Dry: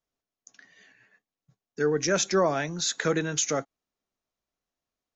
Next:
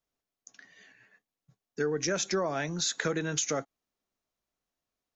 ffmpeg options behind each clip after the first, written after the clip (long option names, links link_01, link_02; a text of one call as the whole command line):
ffmpeg -i in.wav -af "acompressor=threshold=-26dB:ratio=6" out.wav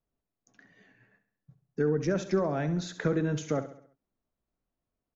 ffmpeg -i in.wav -filter_complex "[0:a]lowpass=frequency=1100:poles=1,lowshelf=frequency=300:gain=9,asplit=2[link_01][link_02];[link_02]aecho=0:1:67|134|201|268|335:0.237|0.114|0.0546|0.0262|0.0126[link_03];[link_01][link_03]amix=inputs=2:normalize=0" out.wav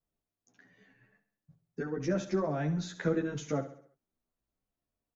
ffmpeg -i in.wav -filter_complex "[0:a]asplit=2[link_01][link_02];[link_02]adelay=11.1,afreqshift=0.82[link_03];[link_01][link_03]amix=inputs=2:normalize=1" out.wav